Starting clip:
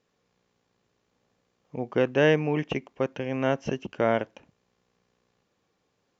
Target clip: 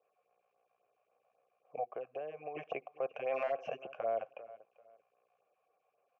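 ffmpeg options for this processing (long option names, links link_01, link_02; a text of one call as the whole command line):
ffmpeg -i in.wav -filter_complex "[0:a]acrossover=split=300[link_01][link_02];[link_02]acompressor=threshold=-27dB:ratio=6[link_03];[link_01][link_03]amix=inputs=2:normalize=0,asplit=3[link_04][link_05][link_06];[link_04]bandpass=frequency=730:width_type=q:width=8,volume=0dB[link_07];[link_05]bandpass=frequency=1090:width_type=q:width=8,volume=-6dB[link_08];[link_06]bandpass=frequency=2440:width_type=q:width=8,volume=-9dB[link_09];[link_07][link_08][link_09]amix=inputs=3:normalize=0,asplit=3[link_10][link_11][link_12];[link_10]afade=type=out:start_time=1.83:duration=0.02[link_13];[link_11]acompressor=threshold=-50dB:ratio=6,afade=type=in:start_time=1.83:duration=0.02,afade=type=out:start_time=2.55:duration=0.02[link_14];[link_12]afade=type=in:start_time=2.55:duration=0.02[link_15];[link_13][link_14][link_15]amix=inputs=3:normalize=0,aecho=1:1:392|784:0.075|0.0195,asplit=3[link_16][link_17][link_18];[link_16]afade=type=out:start_time=3.25:duration=0.02[link_19];[link_17]asplit=2[link_20][link_21];[link_21]highpass=frequency=720:poles=1,volume=13dB,asoftclip=type=tanh:threshold=-29dB[link_22];[link_20][link_22]amix=inputs=2:normalize=0,lowpass=frequency=3300:poles=1,volume=-6dB,afade=type=in:start_time=3.25:duration=0.02,afade=type=out:start_time=3.66:duration=0.02[link_23];[link_18]afade=type=in:start_time=3.66:duration=0.02[link_24];[link_19][link_23][link_24]amix=inputs=3:normalize=0,equalizer=frequency=250:width_type=o:width=1:gain=-9,equalizer=frequency=500:width_type=o:width=1:gain=9,equalizer=frequency=1000:width_type=o:width=1:gain=-4,equalizer=frequency=2000:width_type=o:width=1:gain=7,equalizer=frequency=4000:width_type=o:width=1:gain=-11,alimiter=level_in=8dB:limit=-24dB:level=0:latency=1:release=18,volume=-8dB,afftfilt=real='re*(1-between(b*sr/1024,280*pow(5400/280,0.5+0.5*sin(2*PI*3.7*pts/sr))/1.41,280*pow(5400/280,0.5+0.5*sin(2*PI*3.7*pts/sr))*1.41))':imag='im*(1-between(b*sr/1024,280*pow(5400/280,0.5+0.5*sin(2*PI*3.7*pts/sr))/1.41,280*pow(5400/280,0.5+0.5*sin(2*PI*3.7*pts/sr))*1.41))':win_size=1024:overlap=0.75,volume=6.5dB" out.wav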